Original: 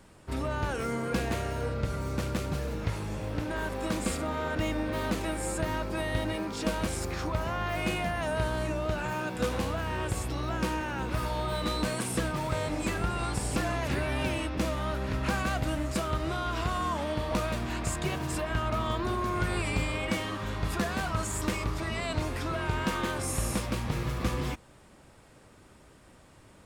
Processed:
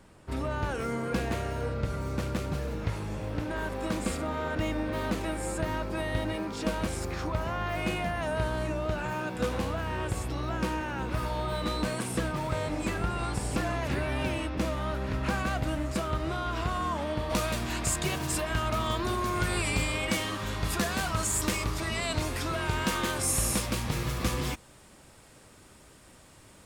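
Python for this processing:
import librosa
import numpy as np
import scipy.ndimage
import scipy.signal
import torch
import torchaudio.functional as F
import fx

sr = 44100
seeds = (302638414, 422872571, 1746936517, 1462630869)

y = fx.high_shelf(x, sr, hz=3300.0, db=fx.steps((0.0, -3.0), (17.29, 8.5)))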